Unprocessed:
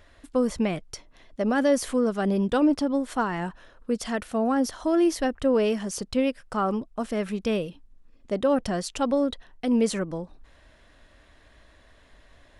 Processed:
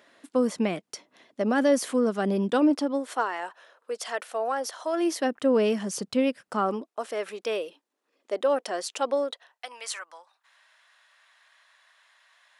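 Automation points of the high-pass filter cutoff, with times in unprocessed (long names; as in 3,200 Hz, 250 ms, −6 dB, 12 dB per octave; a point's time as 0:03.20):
high-pass filter 24 dB per octave
0:02.51 190 Hz
0:03.42 470 Hz
0:04.92 470 Hz
0:05.57 130 Hz
0:06.38 130 Hz
0:07.01 380 Hz
0:09.19 380 Hz
0:09.78 920 Hz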